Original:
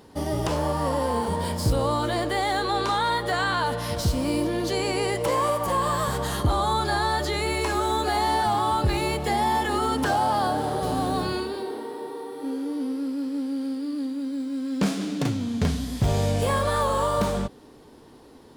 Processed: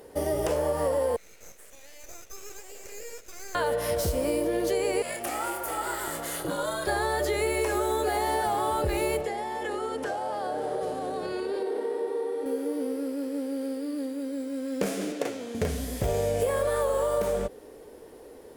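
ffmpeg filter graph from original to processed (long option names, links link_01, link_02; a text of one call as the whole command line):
ffmpeg -i in.wav -filter_complex "[0:a]asettb=1/sr,asplit=3[link_01][link_02][link_03];[link_01]atrim=end=1.164[link_04];[link_02]atrim=start=1.16:end=3.55,asetpts=PTS-STARTPTS,afade=type=in:duration=0.004:curve=qsin,afade=type=out:start_time=2.386:duration=0.004:curve=qsin,bandpass=frequency=3100:width_type=q:width=6.3,aeval=exprs='abs(val(0))':channel_layout=same[link_05];[link_03]atrim=start=3.546[link_06];[link_04][link_05]acrossfade=duration=0.004:curve1=hsin:curve2=qsin[link_07];[link_07][link_06]acrossfade=duration=0.004:curve1=qsin:curve2=hsin,asettb=1/sr,asplit=3[link_08][link_09][link_10];[link_08]atrim=end=5.024[link_11];[link_09]atrim=start=5.02:end=6.87,asetpts=PTS-STARTPTS,afade=type=in:duration=0.004:curve=qsin,afade=type=out:start_time=1.846:duration=0.004:curve=qsin,equalizer=frequency=240:width=0.38:gain=-12.5,asplit=2[link_12][link_13];[link_13]adelay=28,volume=-6.5dB[link_14];[link_12][link_14]amix=inputs=2:normalize=0,atrim=end_sample=81585,aeval=exprs='val(0)*sin(2*PI*230*n/s)':channel_layout=same[link_15];[link_10]atrim=start=6.866[link_16];[link_11][link_15]acrossfade=duration=0.004:curve1=hsin:curve2=qsin[link_17];[link_17][link_16]acrossfade=duration=0.004:curve1=qsin:curve2=hsin,asettb=1/sr,asplit=3[link_18][link_19][link_20];[link_18]atrim=end=9.214[link_21];[link_19]atrim=start=9.21:end=12.46,asetpts=PTS-STARTPTS,afade=type=in:duration=0.004:curve=qsin,afade=type=out:start_time=3.246:duration=0.004:curve=qsin,acompressor=threshold=-29dB:ratio=6:attack=3.2:release=140:knee=1:detection=peak,highpass=110,lowpass=7500[link_22];[link_20]atrim=start=12.456[link_23];[link_21][link_22]acrossfade=duration=0.004:curve1=hsin:curve2=qsin[link_24];[link_24][link_23]acrossfade=duration=0.004:curve1=qsin:curve2=hsin,asettb=1/sr,asplit=3[link_25][link_26][link_27];[link_25]atrim=end=15.124[link_28];[link_26]atrim=start=15.12:end=15.55,asetpts=PTS-STARTPTS,afade=type=in:duration=0.004:curve=qsin,afade=type=out:start_time=0.426:duration=0.004:curve=qsin,highpass=350,highshelf=frequency=10000:gain=-9.5[link_29];[link_27]atrim=start=15.546[link_30];[link_28][link_29]acrossfade=duration=0.004:curve1=hsin:curve2=qsin[link_31];[link_31][link_30]acrossfade=duration=0.004:curve1=qsin:curve2=hsin,equalizer=frequency=125:width_type=o:width=1:gain=-8,equalizer=frequency=250:width_type=o:width=1:gain=-6,equalizer=frequency=500:width_type=o:width=1:gain=11,equalizer=frequency=1000:width_type=o:width=1:gain=-6,equalizer=frequency=2000:width_type=o:width=1:gain=3,equalizer=frequency=4000:width_type=o:width=1:gain=-7,equalizer=frequency=16000:width_type=o:width=1:gain=9,acompressor=threshold=-23dB:ratio=6" out.wav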